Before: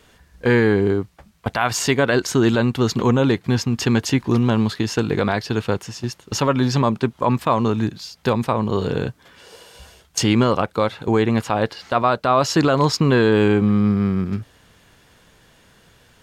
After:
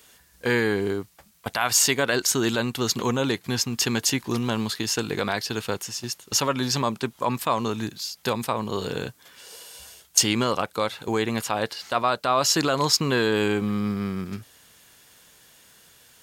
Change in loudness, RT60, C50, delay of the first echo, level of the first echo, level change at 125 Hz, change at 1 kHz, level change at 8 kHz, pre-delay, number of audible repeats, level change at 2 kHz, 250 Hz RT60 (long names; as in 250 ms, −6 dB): −5.0 dB, no reverb audible, no reverb audible, no echo audible, no echo audible, −10.5 dB, −4.5 dB, +5.5 dB, no reverb audible, no echo audible, −3.0 dB, no reverb audible